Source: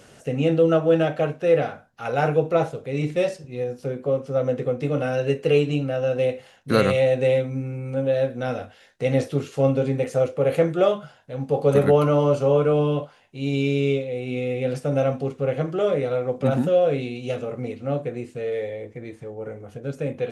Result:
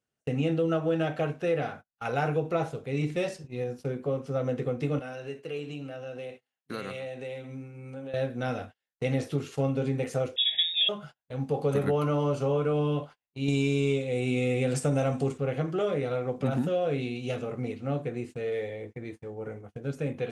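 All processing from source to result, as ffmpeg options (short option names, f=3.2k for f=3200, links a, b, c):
-filter_complex "[0:a]asettb=1/sr,asplit=3[a][b][c];[a]atrim=end=4.994[d];[b]atrim=start=4.99:end=8.14,asetpts=PTS-STARTPTS,afade=t=in:d=0.004:c=qsin,afade=t=out:st=3.146:d=0.004:c=qsin,highpass=f=240:p=1,acompressor=threshold=-38dB:ratio=2:attack=3.2:release=140:knee=1:detection=peak,aecho=1:1:131:0.168,atrim=end_sample=138915[e];[c]atrim=start=8.136[f];[d][e]acrossfade=d=0.004:c1=hsin:c2=qsin[g];[g][f]acrossfade=d=0.004:c1=qsin:c2=hsin,asettb=1/sr,asplit=3[h][i][j];[h]atrim=end=10.364[k];[i]atrim=start=10.36:end=10.89,asetpts=PTS-STARTPTS,afade=t=in:d=0.004:c=qsin,afade=t=out:st=0.526:d=0.004:c=qsin,lowpass=f=3.3k:t=q:w=0.5098,lowpass=f=3.3k:t=q:w=0.6013,lowpass=f=3.3k:t=q:w=0.9,lowpass=f=3.3k:t=q:w=2.563,afreqshift=-3900,asuperstop=centerf=1200:order=20:qfactor=1.4[l];[j]atrim=start=10.886[m];[k][l]acrossfade=d=0.004:c1=hsin:c2=qsin[n];[n][m]acrossfade=d=0.004:c1=qsin:c2=hsin,asettb=1/sr,asplit=3[o][p][q];[o]atrim=end=13.484[r];[p]atrim=start=13.48:end=15.38,asetpts=PTS-STARTPTS,afade=t=in:d=0.004:c=qsin,afade=t=out:st=1.896:d=0.004:c=qsin,equalizer=f=7.9k:w=2.1:g=12.5,acontrast=49[s];[q]atrim=start=15.376[t];[r][s]acrossfade=d=0.004:c1=hsin:c2=qsin[u];[u][t]acrossfade=d=0.004:c1=qsin:c2=hsin,agate=range=-35dB:threshold=-38dB:ratio=16:detection=peak,equalizer=f=550:t=o:w=0.47:g=-5.5,acompressor=threshold=-22dB:ratio=3,volume=-2dB"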